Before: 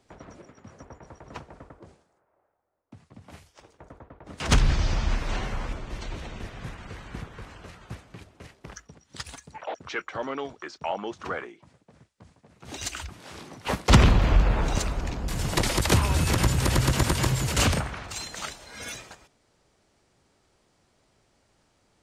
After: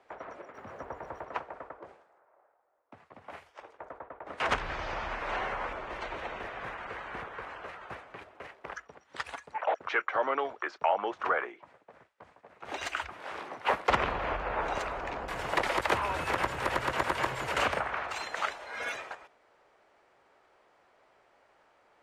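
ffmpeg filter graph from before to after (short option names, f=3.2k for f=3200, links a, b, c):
-filter_complex "[0:a]asettb=1/sr,asplit=3[a][b][c];[a]atrim=end=0.544[d];[b]atrim=start=0.54:end=1.25,asetpts=PTS-STARTPTS,afade=t=in:d=0.004:c=qsin,afade=t=out:st=0.706:d=0.004:c=qsin,aeval=exprs='val(0)+0.5*0.00158*sgn(val(0))':c=same,lowshelf=f=260:g=9.5[e];[c]atrim=start=1.246[f];[d][e]acrossfade=d=0.004:c1=hsin:c2=qsin[g];[g][f]acrossfade=d=0.004:c1=qsin:c2=hsin,acompressor=threshold=-30dB:ratio=2,acrossover=split=440 2500:gain=0.0794 1 0.1[h][i][j];[h][i][j]amix=inputs=3:normalize=0,volume=7.5dB"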